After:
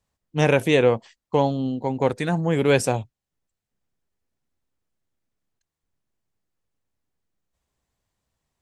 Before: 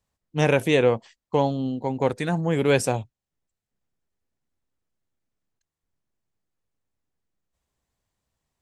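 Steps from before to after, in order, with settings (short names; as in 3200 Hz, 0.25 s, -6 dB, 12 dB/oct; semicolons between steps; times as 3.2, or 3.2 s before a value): high shelf 11000 Hz -2.5 dB; gain +1.5 dB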